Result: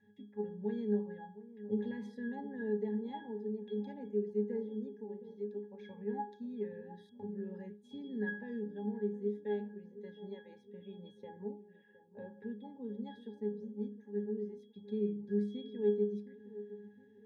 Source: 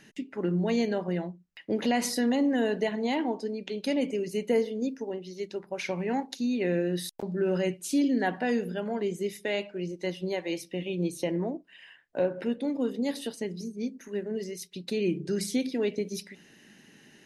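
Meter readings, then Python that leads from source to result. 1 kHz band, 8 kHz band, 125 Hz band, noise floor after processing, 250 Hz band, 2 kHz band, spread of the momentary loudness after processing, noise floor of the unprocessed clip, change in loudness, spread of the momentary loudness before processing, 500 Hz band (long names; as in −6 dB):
−12.5 dB, below −40 dB, −10.5 dB, −62 dBFS, −10.0 dB, −13.5 dB, 15 LU, −57 dBFS, −9.5 dB, 9 LU, −8.0 dB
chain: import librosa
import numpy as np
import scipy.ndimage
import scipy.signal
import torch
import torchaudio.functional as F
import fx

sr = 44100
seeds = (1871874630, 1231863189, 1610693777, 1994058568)

y = fx.octave_resonator(x, sr, note='G#', decay_s=0.32)
y = fx.echo_wet_lowpass(y, sr, ms=714, feedback_pct=46, hz=1100.0, wet_db=-15.0)
y = F.gain(torch.from_numpy(y), 3.5).numpy()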